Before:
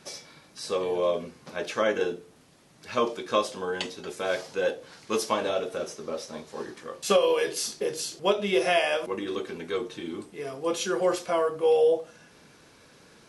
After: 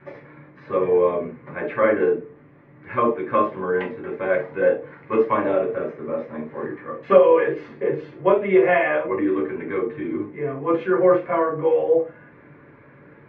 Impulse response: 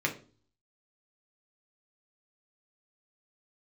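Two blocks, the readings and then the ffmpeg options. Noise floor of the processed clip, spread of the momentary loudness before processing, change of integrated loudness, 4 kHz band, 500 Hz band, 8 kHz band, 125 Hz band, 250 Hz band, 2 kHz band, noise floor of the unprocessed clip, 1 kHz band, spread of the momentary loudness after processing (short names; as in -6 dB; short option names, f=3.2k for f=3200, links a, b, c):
-49 dBFS, 15 LU, +6.5 dB, under -10 dB, +7.0 dB, under -40 dB, +9.0 dB, +9.0 dB, +5.5 dB, -56 dBFS, +6.5 dB, 12 LU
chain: -filter_complex "[0:a]lowpass=f=1.9k:w=0.5412,lowpass=f=1.9k:w=1.3066[a];[1:a]atrim=start_sample=2205,atrim=end_sample=3528[b];[a][b]afir=irnorm=-1:irlink=0"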